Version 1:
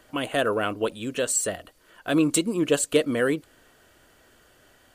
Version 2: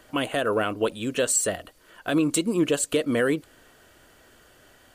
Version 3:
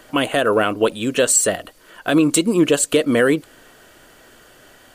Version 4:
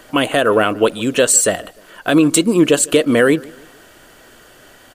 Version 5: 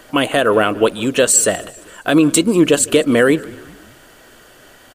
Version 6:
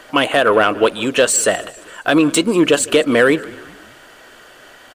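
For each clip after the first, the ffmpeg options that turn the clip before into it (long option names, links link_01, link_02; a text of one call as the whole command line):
ffmpeg -i in.wav -af "alimiter=limit=-15dB:level=0:latency=1:release=178,volume=2.5dB" out.wav
ffmpeg -i in.wav -af "equalizer=frequency=67:width=1.4:gain=-8.5,volume=7.5dB" out.wav
ffmpeg -i in.wav -filter_complex "[0:a]asplit=2[link_01][link_02];[link_02]adelay=151,lowpass=frequency=3700:poles=1,volume=-23dB,asplit=2[link_03][link_04];[link_04]adelay=151,lowpass=frequency=3700:poles=1,volume=0.42,asplit=2[link_05][link_06];[link_06]adelay=151,lowpass=frequency=3700:poles=1,volume=0.42[link_07];[link_01][link_03][link_05][link_07]amix=inputs=4:normalize=0,volume=3dB" out.wav
ffmpeg -i in.wav -filter_complex "[0:a]asplit=4[link_01][link_02][link_03][link_04];[link_02]adelay=195,afreqshift=-63,volume=-23dB[link_05];[link_03]adelay=390,afreqshift=-126,volume=-28.8dB[link_06];[link_04]adelay=585,afreqshift=-189,volume=-34.7dB[link_07];[link_01][link_05][link_06][link_07]amix=inputs=4:normalize=0" out.wav
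ffmpeg -i in.wav -filter_complex "[0:a]asplit=2[link_01][link_02];[link_02]highpass=frequency=720:poles=1,volume=9dB,asoftclip=type=tanh:threshold=-1dB[link_03];[link_01][link_03]amix=inputs=2:normalize=0,lowpass=frequency=3600:poles=1,volume=-6dB" out.wav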